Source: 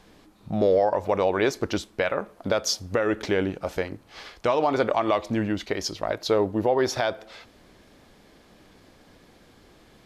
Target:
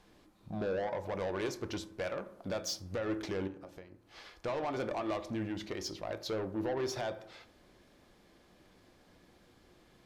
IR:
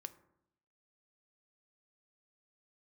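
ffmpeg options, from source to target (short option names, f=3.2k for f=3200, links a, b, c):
-filter_complex "[0:a]asettb=1/sr,asplit=3[a][b][c];[a]atrim=end=3.474[d];[b]atrim=start=3.47:end=4.41,asetpts=PTS-STARTPTS,afade=t=in:d=0.004:c=qsin,afade=t=out:st=0.936:d=0.004:c=qsin,acompressor=threshold=-38dB:ratio=12[e];[c]atrim=start=4.406[f];[d][e]acrossfade=d=0.004:c1=hsin:c2=qsin[g];[g][f]acrossfade=d=0.004:c1=qsin:c2=hsin,asoftclip=type=tanh:threshold=-21.5dB[h];[1:a]atrim=start_sample=2205[i];[h][i]afir=irnorm=-1:irlink=0,volume=-4dB"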